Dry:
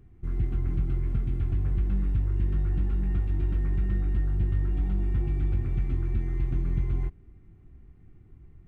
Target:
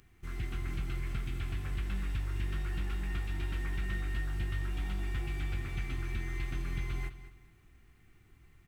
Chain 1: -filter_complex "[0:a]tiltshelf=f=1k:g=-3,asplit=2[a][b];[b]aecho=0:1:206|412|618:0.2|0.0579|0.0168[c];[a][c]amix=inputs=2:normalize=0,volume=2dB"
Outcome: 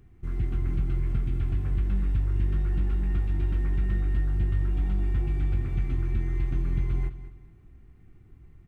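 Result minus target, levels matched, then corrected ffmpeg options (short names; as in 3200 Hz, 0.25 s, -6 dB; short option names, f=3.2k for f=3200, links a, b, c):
1000 Hz band -9.0 dB
-filter_complex "[0:a]tiltshelf=f=1k:g=-12.5,asplit=2[a][b];[b]aecho=0:1:206|412|618:0.2|0.0579|0.0168[c];[a][c]amix=inputs=2:normalize=0,volume=2dB"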